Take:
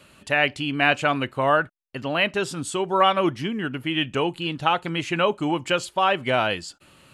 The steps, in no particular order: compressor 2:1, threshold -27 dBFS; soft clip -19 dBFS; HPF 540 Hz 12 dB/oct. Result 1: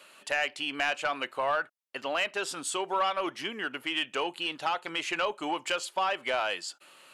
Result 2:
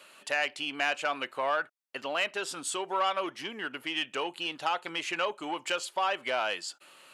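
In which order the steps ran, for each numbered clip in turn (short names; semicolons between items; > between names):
HPF > compressor > soft clip; compressor > soft clip > HPF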